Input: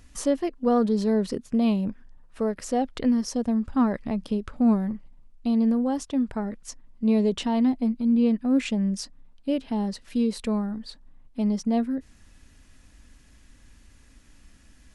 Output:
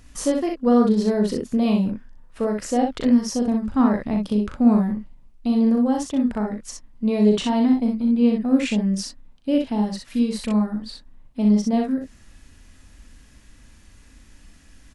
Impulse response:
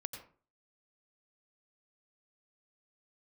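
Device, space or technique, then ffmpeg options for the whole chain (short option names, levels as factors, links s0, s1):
slapback doubling: -filter_complex "[0:a]asettb=1/sr,asplit=3[s0][s1][s2];[s0]atrim=end=9.814[s3];[s1]atrim=start=9.81:end=10.61,asetpts=PTS-STARTPTS,afade=t=in:d=0.004:c=qsin,afade=t=out:st=0.796:d=0.004:c=qsin,equalizer=f=420:w=2.6:g=-6.5[s4];[s2]atrim=start=10.606[s5];[s3][s4]acrossfade=d=0.004:c1=hsin:c2=qsin[s6];[s6][s5]acrossfade=d=0.004:c1=qsin:c2=hsin,asplit=3[s7][s8][s9];[s8]adelay=38,volume=0.501[s10];[s9]adelay=62,volume=0.596[s11];[s7][s10][s11]amix=inputs=3:normalize=0,volume=1.33"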